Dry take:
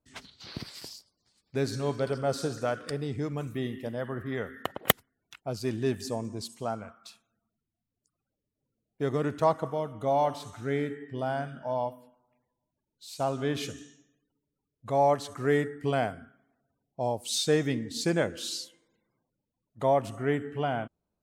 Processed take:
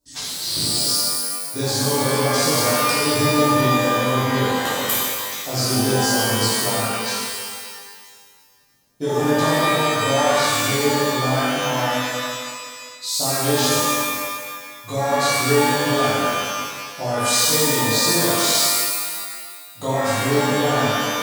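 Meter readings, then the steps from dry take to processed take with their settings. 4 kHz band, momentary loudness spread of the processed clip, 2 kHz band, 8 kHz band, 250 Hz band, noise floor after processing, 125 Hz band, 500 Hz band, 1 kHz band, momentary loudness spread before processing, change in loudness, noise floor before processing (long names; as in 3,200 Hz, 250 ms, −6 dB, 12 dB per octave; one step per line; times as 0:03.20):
+18.0 dB, 12 LU, +15.5 dB, +21.0 dB, +10.5 dB, −43 dBFS, +10.0 dB, +8.5 dB, +11.5 dB, 15 LU, +11.5 dB, below −85 dBFS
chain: high shelf with overshoot 3,300 Hz +12 dB, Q 1.5
downward compressor, threshold −28 dBFS, peak gain reduction 19.5 dB
reverb with rising layers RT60 1.7 s, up +12 semitones, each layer −2 dB, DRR −11.5 dB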